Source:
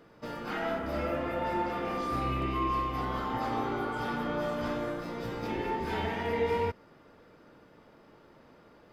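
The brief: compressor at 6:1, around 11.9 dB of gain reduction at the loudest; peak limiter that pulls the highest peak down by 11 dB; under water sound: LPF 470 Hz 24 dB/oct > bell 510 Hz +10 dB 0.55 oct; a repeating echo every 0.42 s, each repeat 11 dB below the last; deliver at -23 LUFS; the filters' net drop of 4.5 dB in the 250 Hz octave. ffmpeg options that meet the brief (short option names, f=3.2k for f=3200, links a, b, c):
-af "equalizer=f=250:t=o:g=-7.5,acompressor=threshold=-40dB:ratio=6,alimiter=level_in=17.5dB:limit=-24dB:level=0:latency=1,volume=-17.5dB,lowpass=f=470:w=0.5412,lowpass=f=470:w=1.3066,equalizer=f=510:t=o:w=0.55:g=10,aecho=1:1:420|840|1260:0.282|0.0789|0.0221,volume=28.5dB"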